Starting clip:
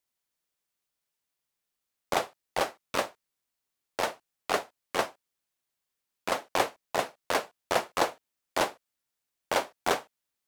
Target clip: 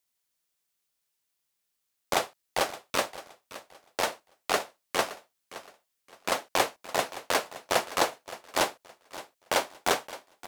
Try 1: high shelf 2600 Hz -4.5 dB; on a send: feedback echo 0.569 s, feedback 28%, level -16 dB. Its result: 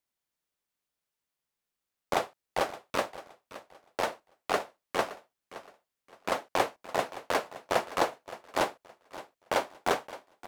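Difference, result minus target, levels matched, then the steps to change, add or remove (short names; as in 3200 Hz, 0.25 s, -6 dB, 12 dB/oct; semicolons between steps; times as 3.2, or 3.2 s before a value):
4000 Hz band -4.0 dB
change: high shelf 2600 Hz +5.5 dB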